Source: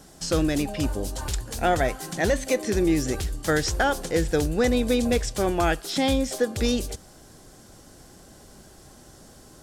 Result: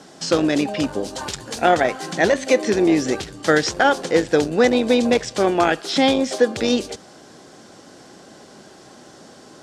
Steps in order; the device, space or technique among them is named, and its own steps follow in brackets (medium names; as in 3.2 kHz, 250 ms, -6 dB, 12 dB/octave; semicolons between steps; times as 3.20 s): public-address speaker with an overloaded transformer (transformer saturation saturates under 180 Hz; band-pass 210–5500 Hz); 1.10–1.71 s: treble shelf 8.6 kHz +6 dB; trim +8 dB